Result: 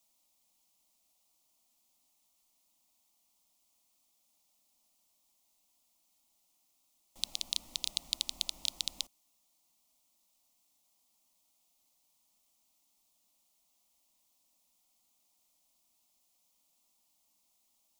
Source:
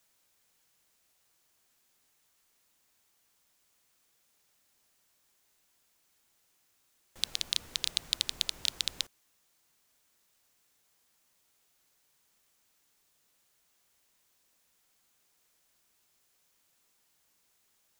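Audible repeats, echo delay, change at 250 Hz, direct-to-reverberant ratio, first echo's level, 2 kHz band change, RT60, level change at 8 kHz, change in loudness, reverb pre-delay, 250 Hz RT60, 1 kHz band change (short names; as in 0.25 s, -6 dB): none, none, -3.0 dB, none, none, -8.0 dB, none, -2.0 dB, -3.5 dB, none, none, -4.5 dB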